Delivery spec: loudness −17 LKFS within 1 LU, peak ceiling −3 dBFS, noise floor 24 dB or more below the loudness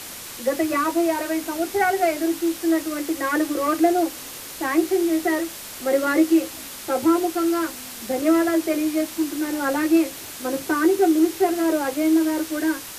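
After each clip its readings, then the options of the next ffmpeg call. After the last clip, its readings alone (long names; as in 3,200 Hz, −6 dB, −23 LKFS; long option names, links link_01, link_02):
background noise floor −37 dBFS; target noise floor −46 dBFS; integrated loudness −22.0 LKFS; sample peak −6.5 dBFS; target loudness −17.0 LKFS
→ -af "afftdn=noise_reduction=9:noise_floor=-37"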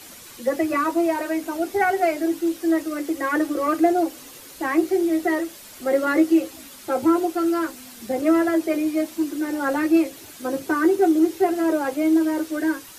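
background noise floor −43 dBFS; target noise floor −46 dBFS
→ -af "afftdn=noise_reduction=6:noise_floor=-43"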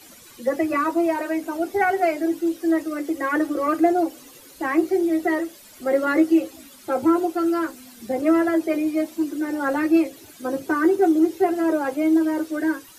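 background noise floor −47 dBFS; integrated loudness −22.0 LKFS; sample peak −6.5 dBFS; target loudness −17.0 LKFS
→ -af "volume=5dB,alimiter=limit=-3dB:level=0:latency=1"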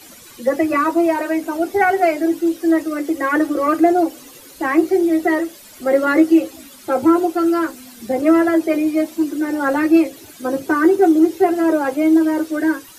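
integrated loudness −17.0 LKFS; sample peak −3.0 dBFS; background noise floor −42 dBFS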